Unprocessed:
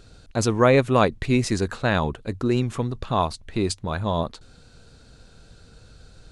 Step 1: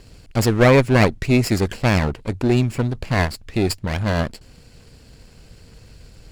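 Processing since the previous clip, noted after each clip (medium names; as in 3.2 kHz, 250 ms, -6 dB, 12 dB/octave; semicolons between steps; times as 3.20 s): comb filter that takes the minimum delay 0.41 ms; trim +4.5 dB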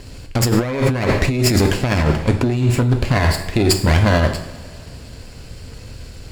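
two-slope reverb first 0.53 s, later 2.5 s, from -19 dB, DRR 5 dB; compressor with a negative ratio -20 dBFS, ratio -1; trim +4.5 dB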